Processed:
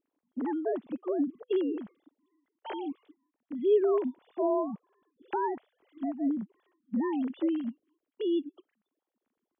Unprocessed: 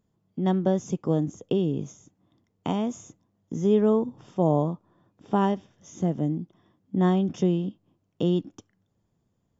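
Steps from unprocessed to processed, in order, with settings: sine-wave speech; gain -5.5 dB

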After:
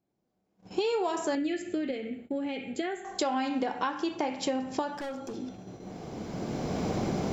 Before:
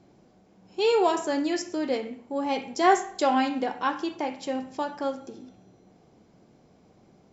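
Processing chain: recorder AGC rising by 15 dB/s; gate -44 dBFS, range -25 dB; compressor 6:1, threshold -26 dBFS, peak gain reduction 11.5 dB; 1.35–3.05 fixed phaser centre 2400 Hz, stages 4; 4.94–5.36 overloaded stage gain 33.5 dB

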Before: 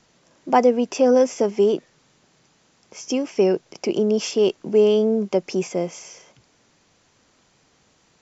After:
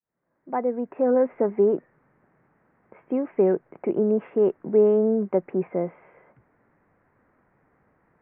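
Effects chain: opening faded in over 1.51 s; steep low-pass 2000 Hz 48 dB/oct; gain -2 dB

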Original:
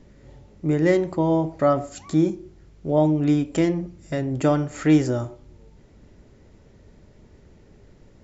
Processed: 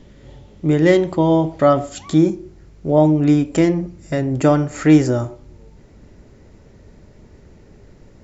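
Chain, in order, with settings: bell 3300 Hz +7.5 dB 0.39 oct, from 2.18 s -3 dB; gain +5.5 dB

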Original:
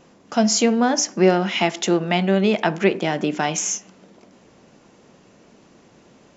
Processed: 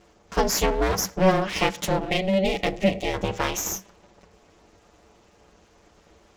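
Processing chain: minimum comb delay 7.7 ms; ring modulator 190 Hz; spectral gain 2.09–3.14, 820–1800 Hz -14 dB

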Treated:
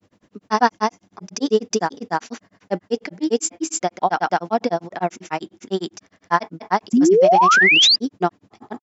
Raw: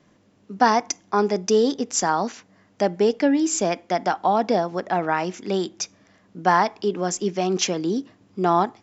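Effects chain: grains 97 ms, grains 10/s, spray 0.265 s, pitch spread up and down by 0 st; painted sound rise, 6.93–7.96, 220–5000 Hz -17 dBFS; gain +4 dB

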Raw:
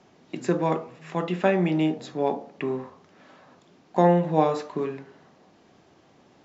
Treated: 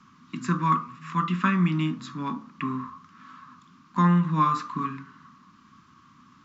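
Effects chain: EQ curve 120 Hz 0 dB, 250 Hz +3 dB, 440 Hz -24 dB, 770 Hz -26 dB, 1100 Hz +13 dB, 1800 Hz -2 dB; gain +2 dB

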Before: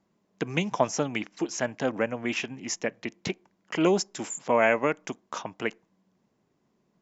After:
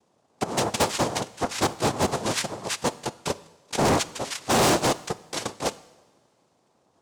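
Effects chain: bell 650 Hz +8.5 dB 0.41 oct; noise vocoder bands 2; overloaded stage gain 20.5 dB; two-slope reverb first 0.93 s, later 3.5 s, from -20 dB, DRR 16 dB; gain +3 dB

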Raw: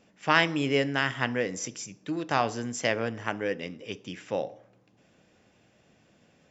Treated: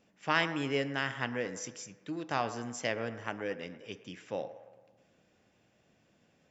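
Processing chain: band-limited delay 0.113 s, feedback 54%, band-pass 990 Hz, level -12 dB; gain -6.5 dB

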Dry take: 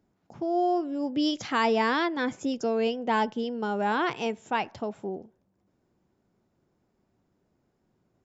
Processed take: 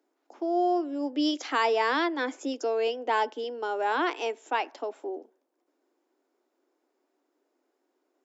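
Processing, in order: steep high-pass 270 Hz 72 dB/oct

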